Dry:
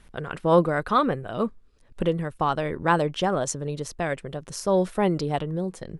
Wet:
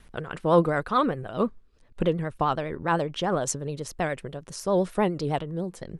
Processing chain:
0:01.40–0:03.36: high-shelf EQ 10,000 Hz −9.5 dB
pitch vibrato 9.8 Hz 77 cents
amplitude modulation by smooth noise, depth 60%
level +1.5 dB

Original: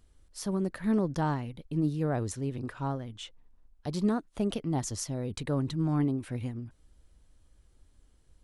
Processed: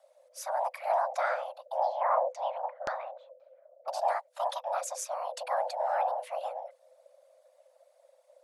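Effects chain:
random phases in short frames
frequency shifter +500 Hz
0:01.82–0:03.88: auto-filter low-pass saw down 1.9 Hz 360–5,600 Hz
level −1.5 dB

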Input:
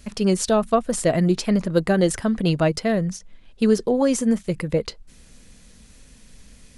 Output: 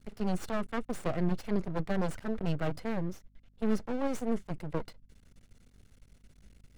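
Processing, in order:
lower of the sound and its delayed copy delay 1.4 ms
parametric band 770 Hz −7.5 dB 0.7 octaves
half-wave rectification
mains hum 50 Hz, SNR 32 dB
high-shelf EQ 3,100 Hz −11.5 dB
in parallel at −7 dB: comparator with hysteresis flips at −33.5 dBFS
on the sum: level −5 dB

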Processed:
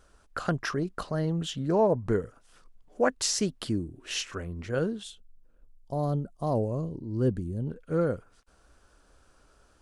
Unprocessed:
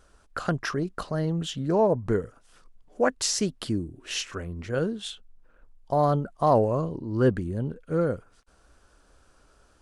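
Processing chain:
0:05.03–0:07.67: parametric band 1,500 Hz −14 dB 2.7 octaves
level −1.5 dB

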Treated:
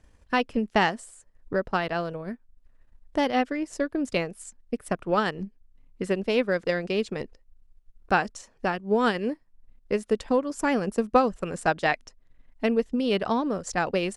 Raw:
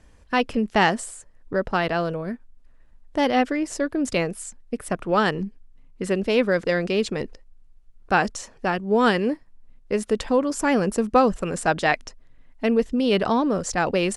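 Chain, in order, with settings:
transient designer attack +4 dB, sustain −6 dB
level −5 dB

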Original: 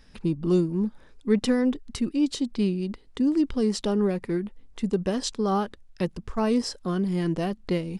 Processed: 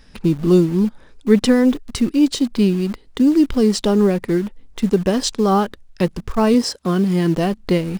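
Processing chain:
0:06.54–0:07.36: high-pass filter 65 Hz 12 dB per octave
in parallel at −10.5 dB: bit-depth reduction 6 bits, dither none
on the sum: level +6.5 dB

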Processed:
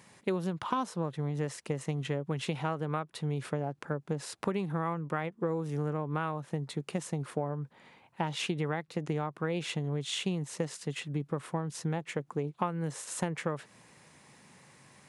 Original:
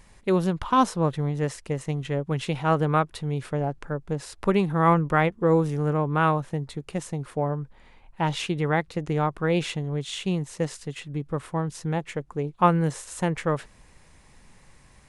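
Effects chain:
high-pass filter 120 Hz 24 dB per octave
downward compressor 10 to 1, threshold −28 dBFS, peak gain reduction 16.5 dB

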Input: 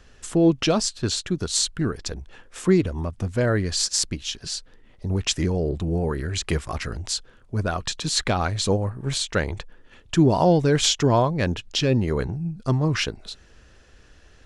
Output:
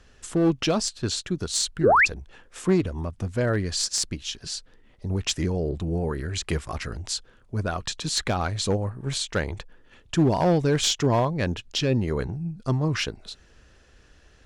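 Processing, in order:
asymmetric clip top −15 dBFS
sound drawn into the spectrogram rise, 0:01.83–0:02.06, 320–2,800 Hz −14 dBFS
level −2.5 dB

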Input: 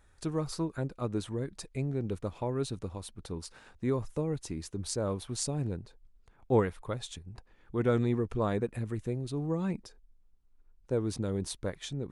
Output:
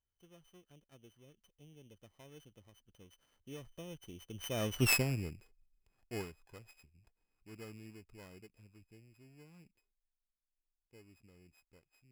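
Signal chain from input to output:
samples sorted by size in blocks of 16 samples
source passing by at 0:04.86, 32 m/s, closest 2.2 metres
level +8.5 dB

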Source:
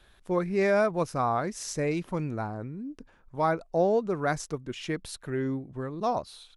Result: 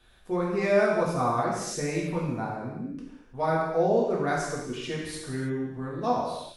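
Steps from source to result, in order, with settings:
reverb whose tail is shaped and stops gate 360 ms falling, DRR −5 dB
level −4.5 dB

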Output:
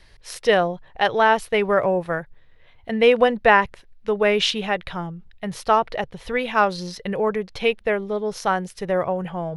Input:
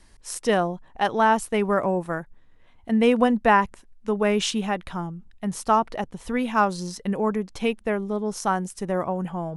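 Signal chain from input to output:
octave-band graphic EQ 125/250/500/1,000/2,000/4,000/8,000 Hz +5/−10/+6/−3/+5/+7/−11 dB
level +2 dB

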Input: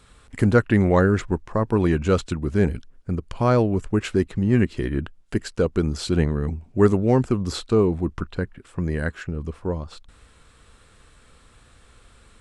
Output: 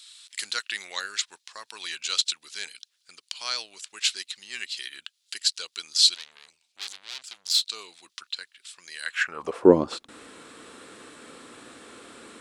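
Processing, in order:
0:06.14–0:07.67: tube saturation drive 27 dB, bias 0.7
high-pass filter sweep 4,000 Hz → 290 Hz, 0:09.01–0:09.70
level +8.5 dB

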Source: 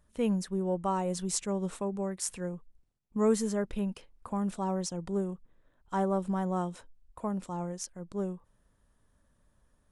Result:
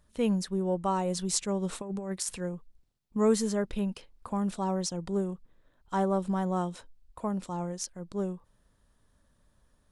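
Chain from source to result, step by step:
0:01.69–0:02.36: compressor whose output falls as the input rises −35 dBFS, ratio −0.5
parametric band 4,200 Hz +5 dB 0.84 octaves
level +1.5 dB

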